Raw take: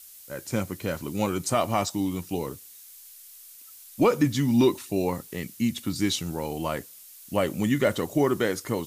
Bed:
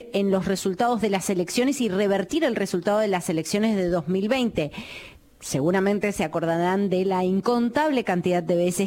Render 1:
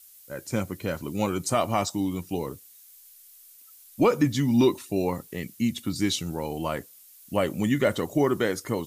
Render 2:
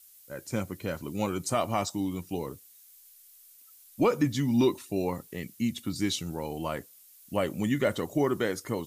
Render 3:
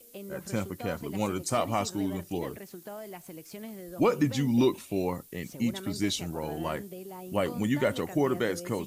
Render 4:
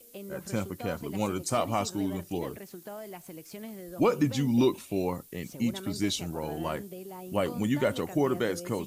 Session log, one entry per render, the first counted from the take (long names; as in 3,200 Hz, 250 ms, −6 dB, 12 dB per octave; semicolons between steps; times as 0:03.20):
broadband denoise 6 dB, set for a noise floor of −48 dBFS
level −3.5 dB
mix in bed −20 dB
dynamic equaliser 1,900 Hz, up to −4 dB, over −54 dBFS, Q 5.2